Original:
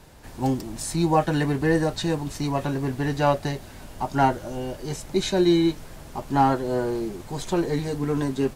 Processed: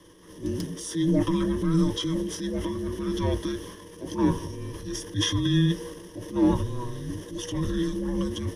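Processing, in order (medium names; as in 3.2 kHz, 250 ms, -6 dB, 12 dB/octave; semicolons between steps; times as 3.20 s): transient shaper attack -6 dB, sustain +7 dB; frequency shift -490 Hz; rippled EQ curve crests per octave 1.2, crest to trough 14 dB; trim -5 dB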